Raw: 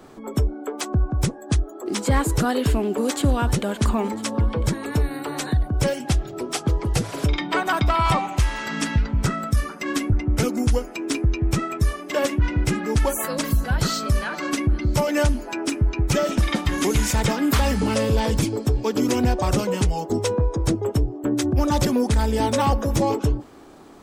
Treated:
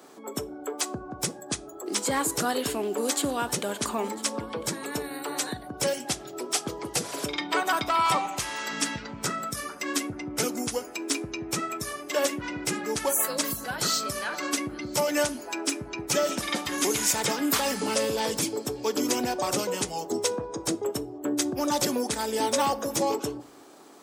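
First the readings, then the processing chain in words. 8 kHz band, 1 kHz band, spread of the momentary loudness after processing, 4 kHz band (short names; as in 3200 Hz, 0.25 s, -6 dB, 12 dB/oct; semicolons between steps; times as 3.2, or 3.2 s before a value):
+3.0 dB, -3.0 dB, 7 LU, 0.0 dB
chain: HPF 180 Hz 12 dB/oct; tone controls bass -8 dB, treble +7 dB; shoebox room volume 400 m³, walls furnished, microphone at 0.33 m; gain -3.5 dB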